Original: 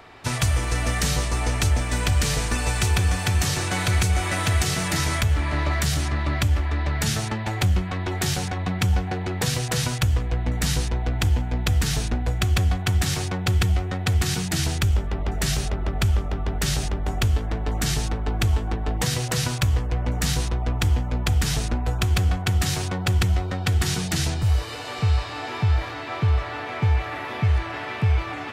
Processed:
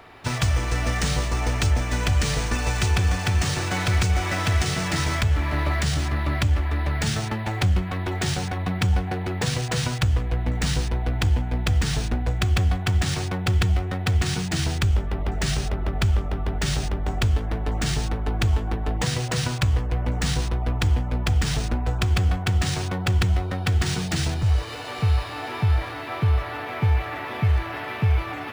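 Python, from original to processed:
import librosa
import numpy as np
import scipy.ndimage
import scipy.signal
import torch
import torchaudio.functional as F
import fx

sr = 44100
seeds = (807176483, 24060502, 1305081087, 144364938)

y = np.interp(np.arange(len(x)), np.arange(len(x))[::3], x[::3])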